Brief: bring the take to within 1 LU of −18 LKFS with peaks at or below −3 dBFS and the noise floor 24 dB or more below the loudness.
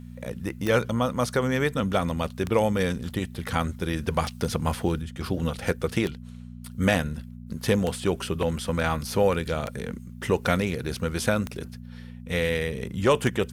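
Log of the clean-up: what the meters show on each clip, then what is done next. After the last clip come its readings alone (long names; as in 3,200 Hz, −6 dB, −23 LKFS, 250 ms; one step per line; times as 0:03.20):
number of clicks 8; mains hum 60 Hz; hum harmonics up to 240 Hz; level of the hum −39 dBFS; integrated loudness −26.5 LKFS; sample peak −10.0 dBFS; target loudness −18.0 LKFS
→ click removal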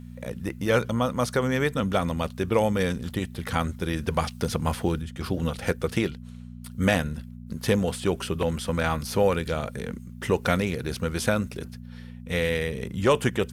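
number of clicks 0; mains hum 60 Hz; hum harmonics up to 240 Hz; level of the hum −39 dBFS
→ hum removal 60 Hz, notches 4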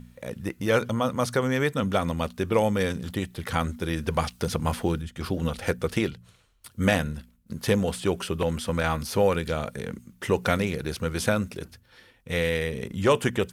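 mains hum none found; integrated loudness −27.0 LKFS; sample peak −10.0 dBFS; target loudness −18.0 LKFS
→ level +9 dB
brickwall limiter −3 dBFS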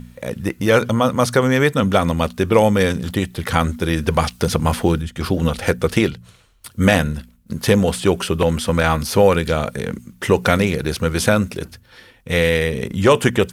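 integrated loudness −18.5 LKFS; sample peak −3.0 dBFS; background noise floor −51 dBFS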